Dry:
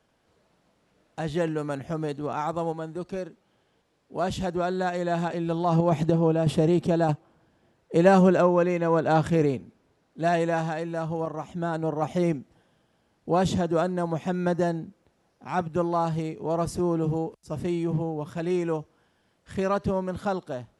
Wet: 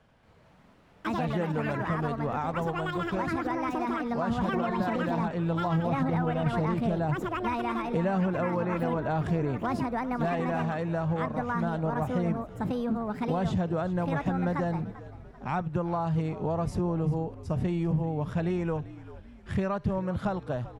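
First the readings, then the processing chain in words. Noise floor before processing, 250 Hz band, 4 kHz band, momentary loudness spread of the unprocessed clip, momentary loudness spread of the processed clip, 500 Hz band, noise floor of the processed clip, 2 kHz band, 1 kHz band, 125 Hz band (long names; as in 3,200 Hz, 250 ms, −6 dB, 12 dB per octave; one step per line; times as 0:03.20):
−69 dBFS, −2.0 dB, −4.0 dB, 11 LU, 5 LU, −6.0 dB, −56 dBFS, −1.0 dB, −2.0 dB, −1.0 dB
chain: in parallel at −1 dB: brickwall limiter −17 dBFS, peak gain reduction 9 dB
on the sum: parametric band 330 Hz −5.5 dB 0.93 octaves
delay with pitch and tempo change per echo 229 ms, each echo +6 semitones, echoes 2
downward compressor 4 to 1, threshold −29 dBFS, peak gain reduction 14.5 dB
bass and treble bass +5 dB, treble −11 dB
on a send: echo with shifted repeats 391 ms, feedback 51%, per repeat −63 Hz, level −16 dB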